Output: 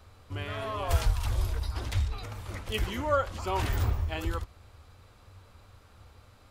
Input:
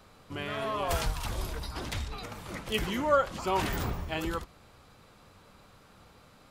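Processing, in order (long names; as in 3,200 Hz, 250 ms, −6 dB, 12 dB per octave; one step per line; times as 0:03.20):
low shelf with overshoot 120 Hz +7 dB, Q 3
level −2 dB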